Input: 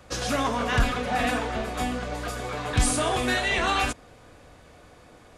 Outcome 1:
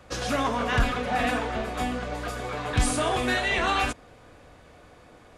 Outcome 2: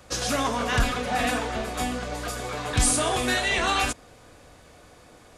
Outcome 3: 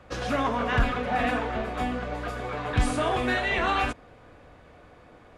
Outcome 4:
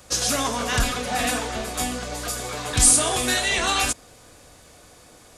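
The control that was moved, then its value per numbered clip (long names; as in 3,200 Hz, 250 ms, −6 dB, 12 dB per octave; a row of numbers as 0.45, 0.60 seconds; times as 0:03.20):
bass and treble, treble: −4, +5, −14, +14 decibels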